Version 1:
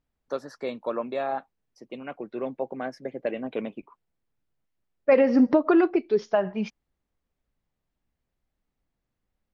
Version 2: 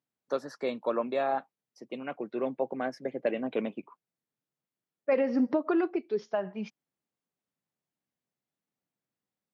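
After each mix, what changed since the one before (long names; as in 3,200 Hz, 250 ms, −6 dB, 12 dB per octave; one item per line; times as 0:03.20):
second voice −7.5 dB
master: add high-pass filter 130 Hz 24 dB per octave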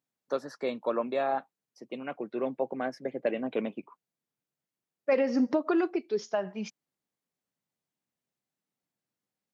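second voice: remove high-frequency loss of the air 200 metres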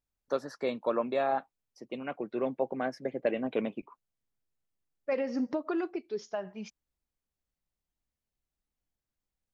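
second voice −5.5 dB
master: remove high-pass filter 130 Hz 24 dB per octave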